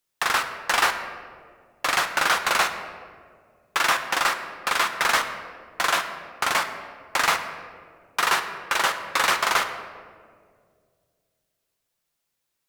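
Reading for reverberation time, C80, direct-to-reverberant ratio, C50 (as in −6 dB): 2.1 s, 10.0 dB, 6.0 dB, 9.0 dB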